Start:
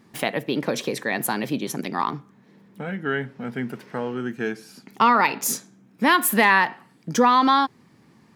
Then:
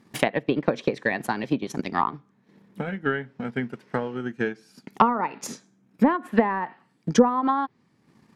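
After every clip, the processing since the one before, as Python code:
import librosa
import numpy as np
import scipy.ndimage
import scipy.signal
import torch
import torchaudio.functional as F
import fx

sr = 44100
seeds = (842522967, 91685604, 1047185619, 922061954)

y = fx.transient(x, sr, attack_db=9, sustain_db=-6)
y = fx.env_lowpass_down(y, sr, base_hz=840.0, full_db=-11.5)
y = y * librosa.db_to_amplitude(-3.5)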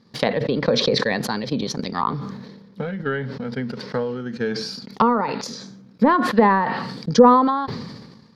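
y = fx.curve_eq(x, sr, hz=(230.0, 340.0, 490.0, 690.0, 1100.0, 2700.0, 4500.0, 7900.0), db=(0, -8, 4, -6, -2, -7, 9, -13))
y = fx.sustainer(y, sr, db_per_s=41.0)
y = y * librosa.db_to_amplitude(2.0)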